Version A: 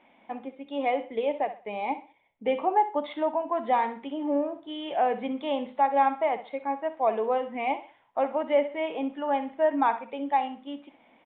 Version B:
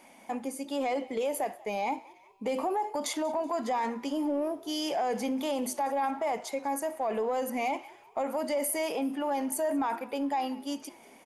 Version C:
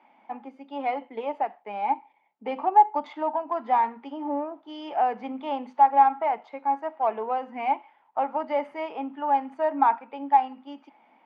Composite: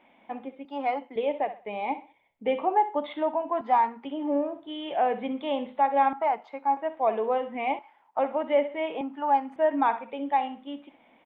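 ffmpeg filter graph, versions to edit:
-filter_complex "[2:a]asplit=5[a][b][c][d][e];[0:a]asplit=6[f][g][h][i][j][k];[f]atrim=end=0.652[l];[a]atrim=start=0.648:end=1.162[m];[g]atrim=start=1.158:end=3.612[n];[b]atrim=start=3.608:end=4.052[o];[h]atrim=start=4.048:end=6.132[p];[c]atrim=start=6.128:end=6.772[q];[i]atrim=start=6.768:end=7.792[r];[d]atrim=start=7.788:end=8.192[s];[j]atrim=start=8.188:end=9.012[t];[e]atrim=start=9.008:end=9.562[u];[k]atrim=start=9.558[v];[l][m]acrossfade=d=0.004:c1=hsin:c2=hsin[w];[w][n]acrossfade=d=0.004:c1=hsin:c2=hsin[x];[x][o]acrossfade=d=0.004:c1=hsin:c2=hsin[y];[y][p]acrossfade=d=0.004:c1=hsin:c2=hsin[z];[z][q]acrossfade=d=0.004:c1=hsin:c2=hsin[aa];[aa][r]acrossfade=d=0.004:c1=hsin:c2=hsin[ab];[ab][s]acrossfade=d=0.004:c1=hsin:c2=hsin[ac];[ac][t]acrossfade=d=0.004:c1=hsin:c2=hsin[ad];[ad][u]acrossfade=d=0.004:c1=hsin:c2=hsin[ae];[ae][v]acrossfade=d=0.004:c1=hsin:c2=hsin"

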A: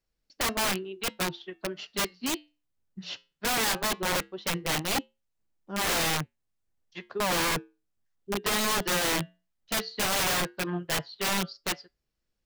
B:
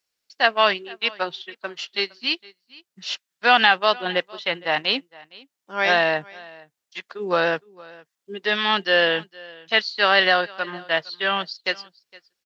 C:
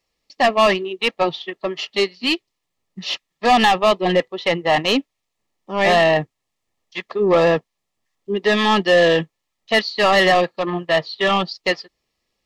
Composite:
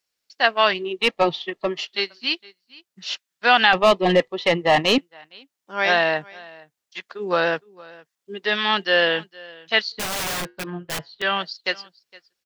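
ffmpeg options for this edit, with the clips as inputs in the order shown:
-filter_complex "[2:a]asplit=2[a][b];[1:a]asplit=4[c][d][e][f];[c]atrim=end=0.88[g];[a]atrim=start=0.72:end=1.9[h];[d]atrim=start=1.74:end=3.732[i];[b]atrim=start=3.728:end=4.982[j];[e]atrim=start=4.978:end=9.922[k];[0:a]atrim=start=9.918:end=11.222[l];[f]atrim=start=11.218[m];[g][h]acrossfade=d=0.16:c1=tri:c2=tri[n];[n][i]acrossfade=d=0.16:c1=tri:c2=tri[o];[o][j]acrossfade=d=0.004:c1=hsin:c2=hsin[p];[p][k]acrossfade=d=0.004:c1=hsin:c2=hsin[q];[q][l]acrossfade=d=0.004:c1=hsin:c2=hsin[r];[r][m]acrossfade=d=0.004:c1=hsin:c2=hsin"

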